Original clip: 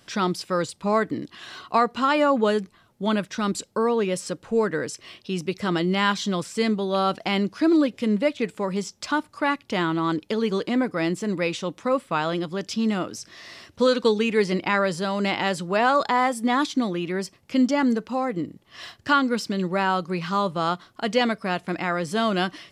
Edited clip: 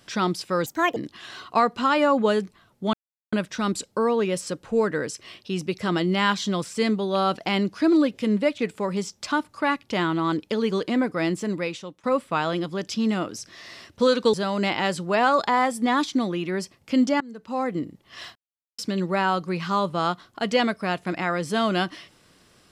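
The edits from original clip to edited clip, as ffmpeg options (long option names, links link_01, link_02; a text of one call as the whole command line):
ffmpeg -i in.wav -filter_complex "[0:a]asplit=9[link_01][link_02][link_03][link_04][link_05][link_06][link_07][link_08][link_09];[link_01]atrim=end=0.664[link_10];[link_02]atrim=start=0.66:end=1.15,asetpts=PTS-STARTPTS,asetrate=71001,aresample=44100[link_11];[link_03]atrim=start=1.146:end=3.12,asetpts=PTS-STARTPTS,afade=type=out:start_time=1.97:duration=0.004:curve=hsin,apad=pad_dur=0.39[link_12];[link_04]atrim=start=3.12:end=11.83,asetpts=PTS-STARTPTS,afade=type=in:duration=0.004:curve=hsin,afade=type=out:start_time=8.1:duration=0.61:silence=0.125893[link_13];[link_05]atrim=start=11.83:end=14.132,asetpts=PTS-STARTPTS,afade=type=in:duration=0.004:curve=hsin:silence=0.125893[link_14];[link_06]atrim=start=14.948:end=17.82,asetpts=PTS-STARTPTS,afade=type=out:start_time=2.868:duration=0.004:curve=hsin:silence=0.0749894[link_15];[link_07]atrim=start=17.82:end=18.97,asetpts=PTS-STARTPTS,afade=type=in:duration=0.4:curve=qua:silence=0.0749894,afade=type=out:start_time=1.146:duration=0.004:curve=hsin[link_16];[link_08]atrim=start=18.97:end=19.4,asetpts=PTS-STARTPTS,volume=0[link_17];[link_09]atrim=start=19.4,asetpts=PTS-STARTPTS,afade=type=in:duration=0.004:curve=hsin[link_18];[link_10][link_11]acrossfade=duration=0.004:curve1=hsin:curve2=hsin[link_19];[link_12][link_13][link_14]concat=n=3:v=0:a=1[link_20];[link_19][link_20]acrossfade=duration=0.004:curve1=hsin:curve2=hsin[link_21];[link_15][link_16][link_17][link_18]concat=n=4:v=0:a=1[link_22];[link_21][link_22]acrossfade=duration=0.004:curve1=hsin:curve2=hsin" out.wav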